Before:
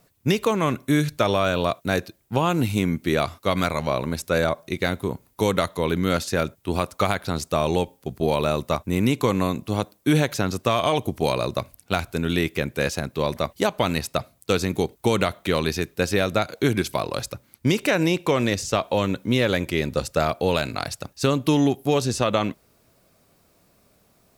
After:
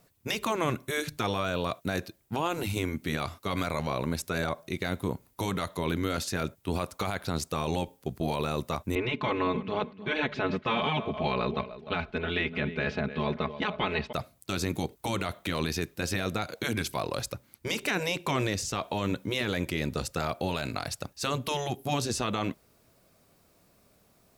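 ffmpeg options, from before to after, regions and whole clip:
-filter_complex "[0:a]asettb=1/sr,asplit=3[s0][s1][s2];[s0]atrim=end=8.954[s3];[s1]atrim=start=8.95:end=14.13,asetpts=PTS-STARTPTS,afade=t=in:d=0.004:c=qsin,afade=t=out:st=5.176:d=0.004:c=qsin,lowpass=f=3300:w=0.5412,lowpass=f=3300:w=1.3066,aecho=1:1:4.7:0.91,atrim=end_sample=228438,aecho=1:1:300|600:0.133|0.0333,atrim=end_sample=228438[s4];[s2]atrim=start=14.126[s5];[s3][s4]acrossfade=d=0.004:c1=hsin:c2=qsin[s6];[s6][s5]acrossfade=d=0.004:c1=qsin:c2=hsin,afftfilt=real='re*lt(hypot(re,im),0.562)':imag='im*lt(hypot(re,im),0.562)':win_size=1024:overlap=0.75,alimiter=limit=0.188:level=0:latency=1:release=16,volume=0.708"

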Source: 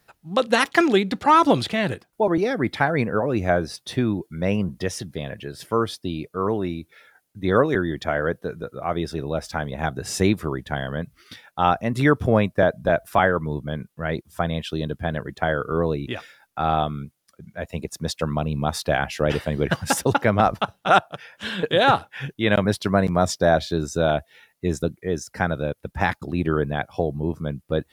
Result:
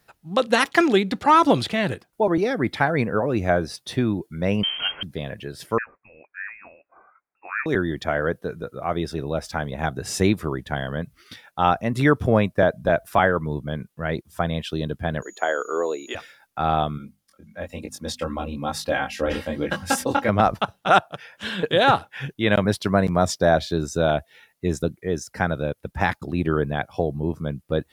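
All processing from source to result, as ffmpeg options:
-filter_complex "[0:a]asettb=1/sr,asplit=3[s0][s1][s2];[s0]atrim=end=4.634[s3];[s1]atrim=start=4.63:end=5.03,asetpts=PTS-STARTPTS,afade=t=in:d=0.004:c=qsin,afade=t=out:st=0.396:d=0.004:c=qsin,aeval=exprs='val(0)+0.5*0.0596*sgn(val(0))':c=same,equalizer=f=330:t=o:w=0.58:g=-12,lowpass=f=2800:t=q:w=0.5098,lowpass=f=2800:t=q:w=0.6013,lowpass=f=2800:t=q:w=0.9,lowpass=f=2800:t=q:w=2.563,afreqshift=-3300[s4];[s2]atrim=start=5.026[s5];[s3][s4]acrossfade=d=0.004:c1=hsin:c2=qsin[s6];[s6][s5]acrossfade=d=0.004:c1=qsin:c2=hsin,asettb=1/sr,asplit=3[s7][s8][s9];[s7]atrim=end=5.784[s10];[s8]atrim=start=5.78:end=7.66,asetpts=PTS-STARTPTS,afade=t=in:d=0.004:c=qsin,afade=t=out:st=1.876:d=0.004:c=qsin,highpass=1400,lowpass=f=2500:t=q:w=0.5098,lowpass=f=2500:t=q:w=0.6013,lowpass=f=2500:t=q:w=0.9,lowpass=f=2500:t=q:w=2.563,afreqshift=-2900[s11];[s9]atrim=start=7.656[s12];[s10][s11]acrossfade=d=0.004:c1=hsin:c2=qsin[s13];[s13][s12]acrossfade=d=0.004:c1=qsin:c2=hsin,asettb=1/sr,asplit=3[s14][s15][s16];[s14]atrim=end=15.224[s17];[s15]atrim=start=15.22:end=16.15,asetpts=PTS-STARTPTS,afade=t=in:d=0.004:c=qsin,afade=t=out:st=0.926:d=0.004:c=qsin,highpass=f=340:w=0.5412,highpass=f=340:w=1.3066,aeval=exprs='val(0)+0.00447*sin(2*PI*6800*n/s)':c=same[s18];[s16]atrim=start=16.146[s19];[s17][s18]acrossfade=d=0.004:c1=hsin:c2=qsin[s20];[s20][s19]acrossfade=d=0.004:c1=qsin:c2=hsin,asettb=1/sr,asplit=3[s21][s22][s23];[s21]atrim=end=16.984[s24];[s22]atrim=start=16.98:end=20.29,asetpts=PTS-STARTPTS,afade=t=in:d=0.004:c=qsin,afade=t=out:st=3.306:d=0.004:c=qsin,bandreject=f=50:t=h:w=6,bandreject=f=100:t=h:w=6,bandreject=f=150:t=h:w=6,bandreject=f=200:t=h:w=6,bandreject=f=250:t=h:w=6,aecho=1:1:3.7:0.62,atrim=end_sample=145971,flanger=delay=20:depth=4.2:speed=1.1[s25];[s23]atrim=start=20.286[s26];[s24][s25]acrossfade=d=0.004:c1=hsin:c2=qsin[s27];[s27][s26]acrossfade=d=0.004:c1=qsin:c2=hsin"

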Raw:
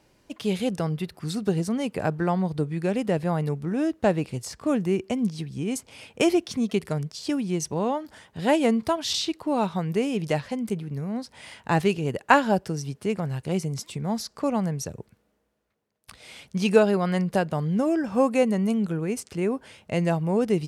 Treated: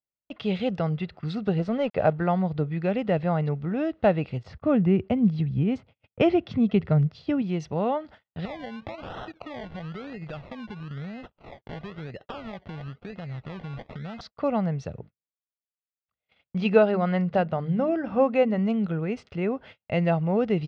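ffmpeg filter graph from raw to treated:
-filter_complex "[0:a]asettb=1/sr,asplit=3[s0][s1][s2];[s0]atrim=end=1.594[s3];[s1]atrim=start=1.59:end=2.13,asetpts=PTS-STARTPTS,afade=t=in:d=0.004:c=qsin,afade=t=out:st=0.536:d=0.004:c=qsin,equalizer=f=570:t=o:w=0.74:g=6.5,aeval=exprs='sgn(val(0))*max(abs(val(0))-0.00531,0)':c=same[s4];[s2]atrim=start=2.126[s5];[s3][s4]acrossfade=d=0.004:c1=hsin:c2=qsin[s6];[s6][s5]acrossfade=d=0.004:c1=qsin:c2=hsin,asettb=1/sr,asplit=3[s7][s8][s9];[s7]atrim=end=4.434[s10];[s8]atrim=start=4.43:end=7.42,asetpts=PTS-STARTPTS,afade=t=in:d=0.004:c=qsin,afade=t=out:st=2.986:d=0.004:c=qsin,highpass=f=74:w=0.5412,highpass=f=74:w=1.3066,aemphasis=mode=reproduction:type=bsi,agate=range=0.316:threshold=0.00501:ratio=16:release=100:detection=peak[s11];[s9]atrim=start=7.416[s12];[s10][s11]acrossfade=d=0.004:c1=hsin:c2=qsin[s13];[s13][s12]acrossfade=d=0.004:c1=qsin:c2=hsin,asettb=1/sr,asplit=3[s14][s15][s16];[s14]atrim=end=8.454[s17];[s15]atrim=start=8.45:end=14.21,asetpts=PTS-STARTPTS,afade=t=in:d=0.004:c=qsin,afade=t=out:st=5.756:d=0.004:c=qsin,acompressor=threshold=0.0224:ratio=10:attack=3.2:release=140:knee=1:detection=peak,acrusher=samples=27:mix=1:aa=0.000001:lfo=1:lforange=16.2:lforate=1[s18];[s16]atrim=start=14.206[s19];[s17][s18]acrossfade=d=0.004:c1=hsin:c2=qsin[s20];[s20][s19]acrossfade=d=0.004:c1=qsin:c2=hsin,asettb=1/sr,asplit=3[s21][s22][s23];[s21]atrim=end=14.994[s24];[s22]atrim=start=14.99:end=18.59,asetpts=PTS-STARTPTS,afade=t=in:d=0.004:c=qsin,afade=t=out:st=3.596:d=0.004:c=qsin,highshelf=f=3000:g=-5,bandreject=f=50:t=h:w=6,bandreject=f=100:t=h:w=6,bandreject=f=150:t=h:w=6,bandreject=f=200:t=h:w=6,bandreject=f=250:t=h:w=6,bandreject=f=300:t=h:w=6[s25];[s23]atrim=start=18.586[s26];[s24][s25]acrossfade=d=0.004:c1=hsin:c2=qsin[s27];[s27][s26]acrossfade=d=0.004:c1=qsin:c2=hsin,lowpass=f=3700:w=0.5412,lowpass=f=3700:w=1.3066,agate=range=0.00794:threshold=0.00631:ratio=16:detection=peak,aecho=1:1:1.5:0.34"

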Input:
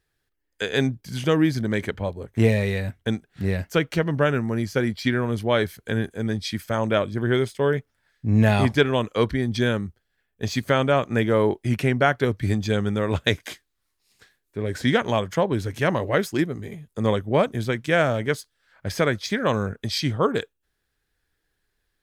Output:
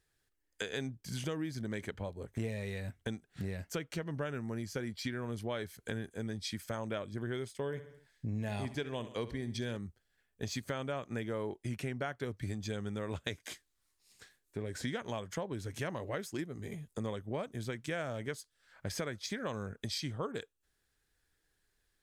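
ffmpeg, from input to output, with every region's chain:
-filter_complex "[0:a]asettb=1/sr,asplit=3[s0][s1][s2];[s0]atrim=end=7.634[s3];[s1]atrim=start=7.63:end=9.77,asetpts=PTS-STARTPTS,afade=t=in:d=0.004:c=qsin,afade=t=out:st=2.136:d=0.004:c=qsin,equalizer=f=1300:t=o:w=0.41:g=-5.5,aecho=1:1:67|134|201|268:0.178|0.0747|0.0314|0.0132,atrim=end_sample=94374[s4];[s2]atrim=start=9.766[s5];[s3][s4]acrossfade=d=0.004:c1=hsin:c2=qsin[s6];[s6][s5]acrossfade=d=0.004:c1=qsin:c2=hsin,equalizer=f=7800:t=o:w=1.1:g=6,acompressor=threshold=0.0224:ratio=4,volume=0.631"

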